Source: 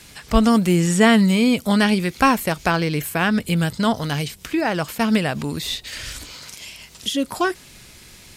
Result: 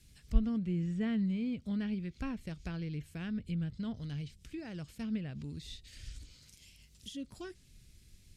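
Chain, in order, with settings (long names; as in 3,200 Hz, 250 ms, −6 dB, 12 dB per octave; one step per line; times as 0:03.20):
guitar amp tone stack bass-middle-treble 10-0-1
treble cut that deepens with the level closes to 2,600 Hz, closed at −33 dBFS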